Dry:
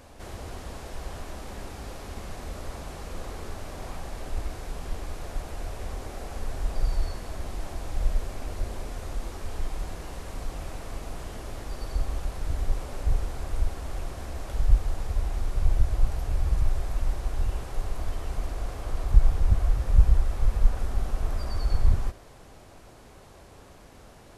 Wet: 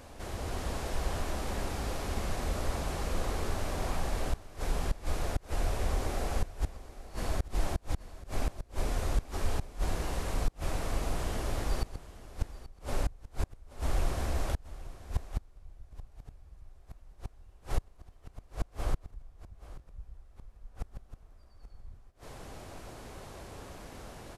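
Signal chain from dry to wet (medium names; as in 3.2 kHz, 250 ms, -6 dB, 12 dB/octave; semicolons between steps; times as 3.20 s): level rider gain up to 4 dB; inverted gate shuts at -17 dBFS, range -32 dB; delay 831 ms -16.5 dB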